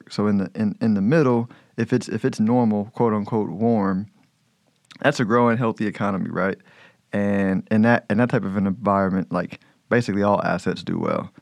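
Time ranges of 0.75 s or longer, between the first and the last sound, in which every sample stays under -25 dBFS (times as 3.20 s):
4.02–5.02 s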